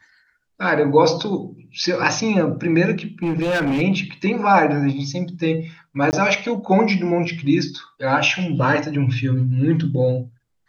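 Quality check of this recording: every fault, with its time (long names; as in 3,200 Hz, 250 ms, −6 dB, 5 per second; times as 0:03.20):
0:03.23–0:03.82: clipping −17 dBFS
0:06.11–0:06.13: drop-out 19 ms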